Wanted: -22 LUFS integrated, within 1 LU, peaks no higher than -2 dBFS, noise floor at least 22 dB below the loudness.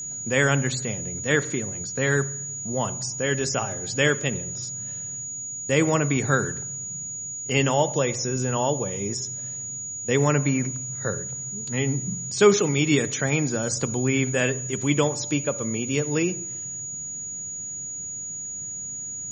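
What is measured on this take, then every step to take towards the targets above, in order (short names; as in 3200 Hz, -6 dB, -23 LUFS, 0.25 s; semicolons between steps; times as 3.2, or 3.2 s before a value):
ticks 23/s; steady tone 6800 Hz; tone level -31 dBFS; loudness -25.0 LUFS; peak -6.0 dBFS; loudness target -22.0 LUFS
-> de-click; notch 6800 Hz, Q 30; gain +3 dB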